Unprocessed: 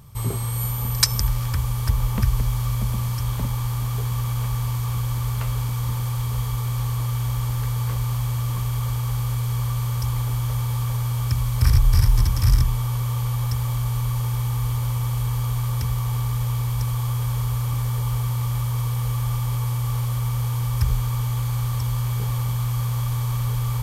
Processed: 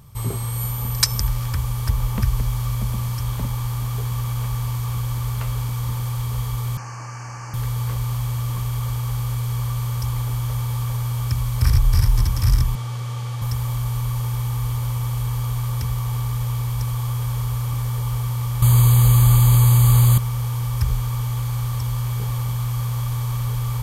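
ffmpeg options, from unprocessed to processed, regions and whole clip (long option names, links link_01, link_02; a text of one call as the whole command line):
ffmpeg -i in.wav -filter_complex "[0:a]asettb=1/sr,asplit=3[link_01][link_02][link_03];[link_01]atrim=end=6.774[link_04];[link_02]atrim=start=6.77:end=7.54,asetpts=PTS-STARTPTS,afade=type=in:duration=0.004:curve=qsin,afade=type=out:start_time=0.766:duration=0.004:curve=qsin,asuperstop=centerf=3600:order=8:qfactor=2.4,highpass=220,equalizer=frequency=460:width_type=q:width=4:gain=-6,equalizer=frequency=740:width_type=q:width=4:gain=3,equalizer=frequency=1600:width_type=q:width=4:gain=7,equalizer=frequency=3500:width_type=q:width=4:gain=-9,equalizer=frequency=6300:width_type=q:width=4:gain=5,lowpass=frequency=6700:width=0.5412,lowpass=frequency=6700:width=1.3066[link_05];[link_03]atrim=start=7.536[link_06];[link_04][link_05]acrossfade=duration=0.004:curve1=hsin:curve2=qsin[link_07];[link_07][link_06]acrossfade=duration=0.004:curve1=qsin:curve2=hsin,asettb=1/sr,asplit=3[link_08][link_09][link_10];[link_08]atrim=end=12.754[link_11];[link_09]atrim=start=12.75:end=13.42,asetpts=PTS-STARTPTS,afade=type=in:duration=0.004:curve=qsin,afade=type=out:start_time=0.666:duration=0.004:curve=qsin,highpass=130,lowpass=7500,bandreject=frequency=1000:width=7.3[link_12];[link_10]atrim=start=13.416[link_13];[link_11][link_12]acrossfade=duration=0.004:curve1=hsin:curve2=qsin[link_14];[link_14][link_13]acrossfade=duration=0.004:curve1=qsin:curve2=hsin,asettb=1/sr,asplit=3[link_15][link_16][link_17];[link_15]atrim=end=18.624[link_18];[link_16]atrim=start=18.62:end=20.18,asetpts=PTS-STARTPTS,afade=type=in:duration=0.004:curve=qsin,afade=type=out:start_time=1.556:duration=0.004:curve=qsin,bass=frequency=250:gain=4,treble=frequency=4000:gain=7,acontrast=89,asuperstop=centerf=5500:order=20:qfactor=3.9[link_19];[link_17]atrim=start=20.176[link_20];[link_18][link_19]acrossfade=duration=0.004:curve1=hsin:curve2=qsin[link_21];[link_21][link_20]acrossfade=duration=0.004:curve1=qsin:curve2=hsin" out.wav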